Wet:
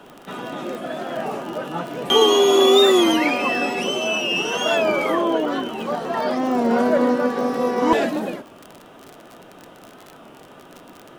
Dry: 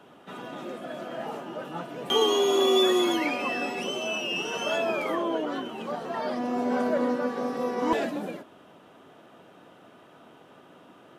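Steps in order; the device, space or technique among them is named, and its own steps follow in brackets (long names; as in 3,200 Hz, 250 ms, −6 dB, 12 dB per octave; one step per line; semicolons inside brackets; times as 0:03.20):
warped LP (wow of a warped record 33 1/3 rpm, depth 100 cents; surface crackle 42 per second −36 dBFS; pink noise bed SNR 43 dB)
level +8 dB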